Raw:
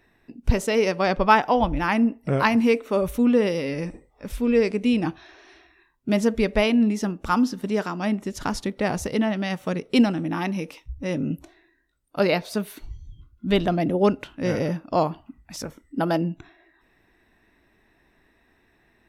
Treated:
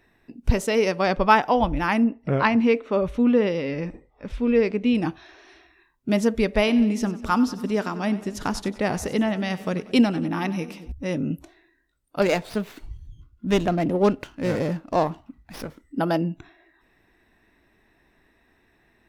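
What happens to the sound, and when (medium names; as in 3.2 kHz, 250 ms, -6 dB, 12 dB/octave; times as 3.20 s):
2.04–4.95 s: low-pass 3.8 kHz
6.45–10.92 s: two-band feedback delay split 570 Hz, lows 224 ms, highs 94 ms, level -16 dB
12.21–15.81 s: sliding maximum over 5 samples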